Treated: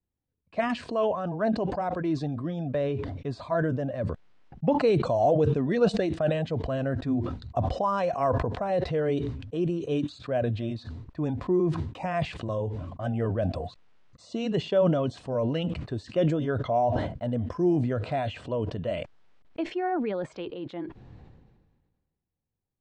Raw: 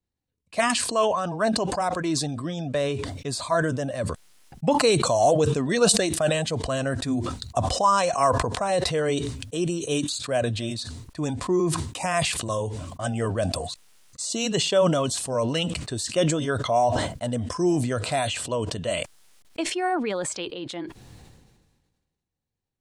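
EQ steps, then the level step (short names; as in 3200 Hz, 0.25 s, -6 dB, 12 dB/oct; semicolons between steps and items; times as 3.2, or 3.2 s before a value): dynamic EQ 1100 Hz, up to -5 dB, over -41 dBFS, Q 2.5; tape spacing loss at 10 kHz 39 dB; 0.0 dB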